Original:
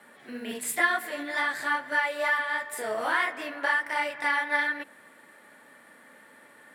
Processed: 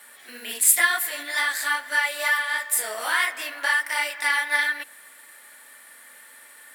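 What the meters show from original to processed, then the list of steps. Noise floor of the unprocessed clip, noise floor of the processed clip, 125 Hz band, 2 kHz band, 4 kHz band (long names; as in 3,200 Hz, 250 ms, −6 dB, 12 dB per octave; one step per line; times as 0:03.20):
−55 dBFS, −49 dBFS, can't be measured, +4.0 dB, +9.0 dB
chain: spectral tilt +5 dB per octave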